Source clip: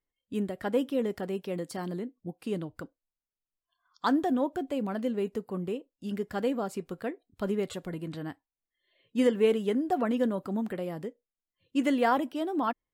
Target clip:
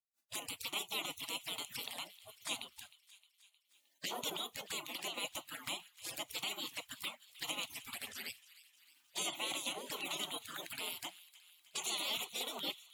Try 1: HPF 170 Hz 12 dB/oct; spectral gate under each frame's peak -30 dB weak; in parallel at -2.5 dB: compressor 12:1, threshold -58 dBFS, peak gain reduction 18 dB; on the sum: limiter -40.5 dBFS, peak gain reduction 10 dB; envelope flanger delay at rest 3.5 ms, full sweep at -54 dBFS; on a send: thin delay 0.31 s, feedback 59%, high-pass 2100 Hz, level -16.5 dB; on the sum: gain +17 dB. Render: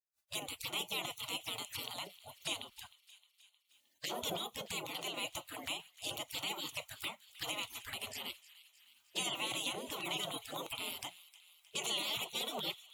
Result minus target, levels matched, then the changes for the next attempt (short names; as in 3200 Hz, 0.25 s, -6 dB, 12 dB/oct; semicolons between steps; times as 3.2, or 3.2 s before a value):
125 Hz band +6.0 dB
change: HPF 370 Hz 12 dB/oct